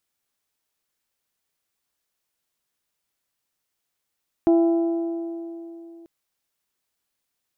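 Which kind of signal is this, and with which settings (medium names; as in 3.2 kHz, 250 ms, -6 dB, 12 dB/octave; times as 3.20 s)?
metal hit bell, length 1.59 s, lowest mode 335 Hz, decay 3.21 s, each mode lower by 9.5 dB, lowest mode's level -13 dB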